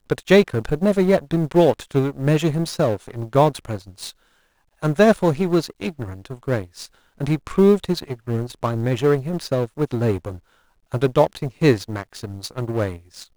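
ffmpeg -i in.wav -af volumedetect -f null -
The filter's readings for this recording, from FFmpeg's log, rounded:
mean_volume: -20.8 dB
max_volume: -1.3 dB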